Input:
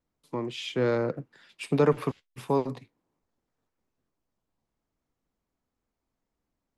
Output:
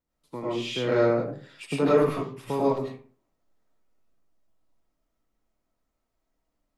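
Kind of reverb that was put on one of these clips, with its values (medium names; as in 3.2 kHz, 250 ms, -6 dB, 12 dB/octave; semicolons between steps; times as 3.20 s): algorithmic reverb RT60 0.44 s, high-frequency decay 0.55×, pre-delay 60 ms, DRR -7.5 dB; trim -4.5 dB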